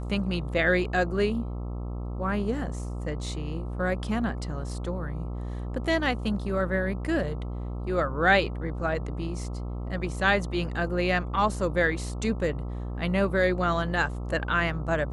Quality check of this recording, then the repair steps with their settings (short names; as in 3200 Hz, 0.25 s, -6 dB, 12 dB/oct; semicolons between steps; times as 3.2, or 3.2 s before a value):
buzz 60 Hz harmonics 22 -33 dBFS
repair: de-hum 60 Hz, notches 22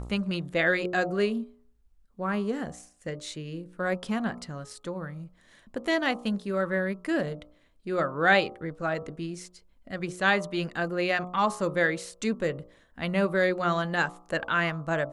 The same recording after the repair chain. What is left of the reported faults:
none